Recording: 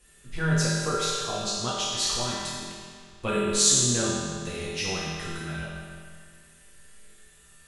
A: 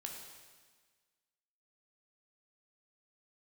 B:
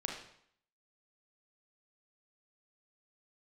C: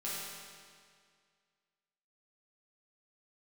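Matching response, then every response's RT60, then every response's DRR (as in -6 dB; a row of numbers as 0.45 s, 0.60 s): C; 1.5 s, 0.65 s, 2.0 s; 1.0 dB, 0.0 dB, -8.5 dB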